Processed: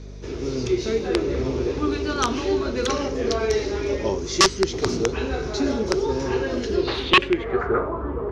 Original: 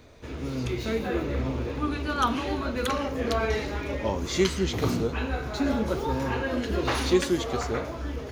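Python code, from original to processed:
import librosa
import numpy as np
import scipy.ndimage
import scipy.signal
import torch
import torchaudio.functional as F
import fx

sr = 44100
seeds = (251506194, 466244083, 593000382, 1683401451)

y = fx.peak_eq(x, sr, hz=390.0, db=14.5, octaves=0.42)
y = fx.rider(y, sr, range_db=4, speed_s=0.5)
y = (np.mod(10.0 ** (8.5 / 20.0) * y + 1.0, 2.0) - 1.0) / 10.0 ** (8.5 / 20.0)
y = fx.add_hum(y, sr, base_hz=50, snr_db=14)
y = fx.filter_sweep_lowpass(y, sr, from_hz=5700.0, to_hz=1100.0, start_s=6.7, end_s=7.89, q=4.1)
y = y * librosa.db_to_amplitude(-3.0)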